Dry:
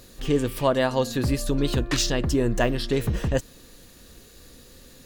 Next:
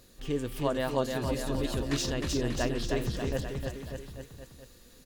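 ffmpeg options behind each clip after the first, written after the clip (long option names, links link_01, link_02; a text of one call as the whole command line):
ffmpeg -i in.wav -af "aecho=1:1:310|589|840.1|1066|1269:0.631|0.398|0.251|0.158|0.1,volume=-9dB" out.wav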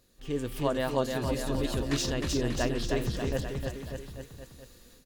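ffmpeg -i in.wav -af "dynaudnorm=framelen=190:gausssize=3:maxgain=10dB,volume=-9dB" out.wav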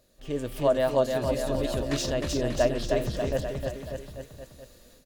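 ffmpeg -i in.wav -af "equalizer=frequency=610:width_type=o:width=0.29:gain=13.5" out.wav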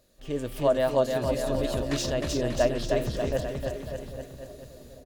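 ffmpeg -i in.wav -filter_complex "[0:a]asplit=2[link_01][link_02];[link_02]adelay=786,lowpass=frequency=980:poles=1,volume=-15dB,asplit=2[link_03][link_04];[link_04]adelay=786,lowpass=frequency=980:poles=1,volume=0.5,asplit=2[link_05][link_06];[link_06]adelay=786,lowpass=frequency=980:poles=1,volume=0.5,asplit=2[link_07][link_08];[link_08]adelay=786,lowpass=frequency=980:poles=1,volume=0.5,asplit=2[link_09][link_10];[link_10]adelay=786,lowpass=frequency=980:poles=1,volume=0.5[link_11];[link_01][link_03][link_05][link_07][link_09][link_11]amix=inputs=6:normalize=0" out.wav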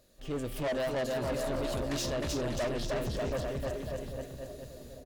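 ffmpeg -i in.wav -af "asoftclip=type=tanh:threshold=-29dB" out.wav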